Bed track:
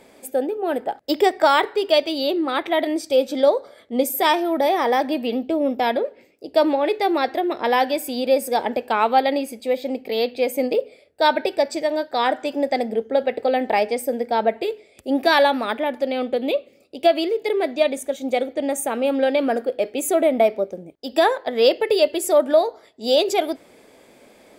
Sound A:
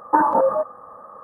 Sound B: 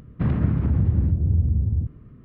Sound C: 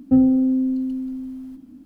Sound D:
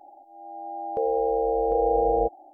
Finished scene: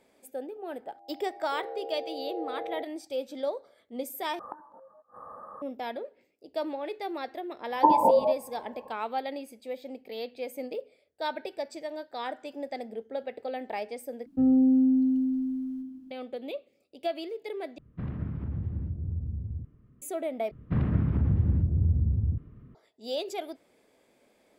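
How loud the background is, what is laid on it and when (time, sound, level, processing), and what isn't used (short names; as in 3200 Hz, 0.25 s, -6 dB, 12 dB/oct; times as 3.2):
bed track -15 dB
0.55 add D -14 dB + HPF 290 Hz
4.39 replace with A -3.5 dB + flipped gate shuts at -18 dBFS, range -32 dB
7.7 add A -3 dB + brick-wall FIR low-pass 1100 Hz
14.26 replace with C -2.5 dB + resonator 130 Hz, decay 1.4 s, mix 70%
17.78 replace with B -13 dB
20.51 replace with B -4.5 dB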